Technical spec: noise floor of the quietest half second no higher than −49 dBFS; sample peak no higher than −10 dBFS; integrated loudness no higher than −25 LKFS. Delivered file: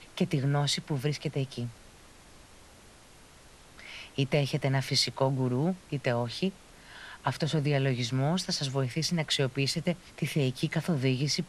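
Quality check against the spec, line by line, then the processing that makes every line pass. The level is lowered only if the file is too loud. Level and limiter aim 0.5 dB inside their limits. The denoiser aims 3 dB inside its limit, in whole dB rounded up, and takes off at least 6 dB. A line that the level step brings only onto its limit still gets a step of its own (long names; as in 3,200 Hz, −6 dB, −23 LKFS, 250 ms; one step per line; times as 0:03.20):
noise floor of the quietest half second −54 dBFS: in spec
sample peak −14.0 dBFS: in spec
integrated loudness −29.5 LKFS: in spec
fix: no processing needed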